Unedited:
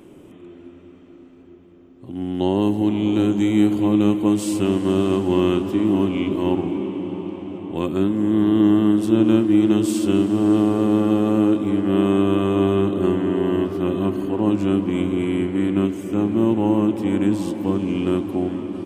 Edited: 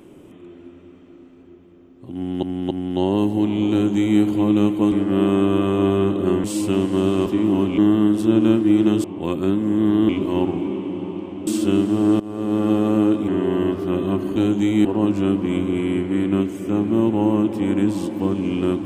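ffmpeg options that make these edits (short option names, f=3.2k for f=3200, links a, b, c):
-filter_complex "[0:a]asplit=14[a][b][c][d][e][f][g][h][i][j][k][l][m][n];[a]atrim=end=2.432[o];[b]atrim=start=2.148:end=2.432[p];[c]atrim=start=2.148:end=4.362[q];[d]atrim=start=11.688:end=13.212[r];[e]atrim=start=4.358:end=5.182[s];[f]atrim=start=5.668:end=6.192[t];[g]atrim=start=8.618:end=9.882[u];[h]atrim=start=7.568:end=8.622[v];[i]atrim=start=6.188:end=7.572[w];[j]atrim=start=9.878:end=10.61,asetpts=PTS-STARTPTS,afade=t=out:st=0.728:d=0.004:c=hsin:silence=0.0891251[x];[k]atrim=start=10.61:end=11.692,asetpts=PTS-STARTPTS,afade=t=in:d=0.49:silence=0.0891251[y];[l]atrim=start=13.208:end=14.292[z];[m]atrim=start=3.148:end=3.642[aa];[n]atrim=start=14.288[ab];[o][p]acrossfade=d=0.004:c1=hsin:c2=hsin[ac];[ac][q]acrossfade=d=0.004:c1=hsin:c2=hsin[ad];[ad][r]acrossfade=d=0.004:c1=hsin:c2=hsin[ae];[ae][s]acrossfade=d=0.004:c1=hsin:c2=hsin[af];[af][t]acrossfade=d=0.004:c1=hsin:c2=hsin[ag];[ag][u]acrossfade=d=0.004:c1=hsin:c2=hsin[ah];[ah][v]acrossfade=d=0.004:c1=hsin:c2=hsin[ai];[ai][w]acrossfade=d=0.004:c1=hsin:c2=hsin[aj];[x][y]concat=n=2:v=0:a=1[ak];[aj][ak]acrossfade=d=0.004:c1=hsin:c2=hsin[al];[al][z]acrossfade=d=0.004:c1=hsin:c2=hsin[am];[am][aa]acrossfade=d=0.004:c1=hsin:c2=hsin[an];[an][ab]acrossfade=d=0.004:c1=hsin:c2=hsin"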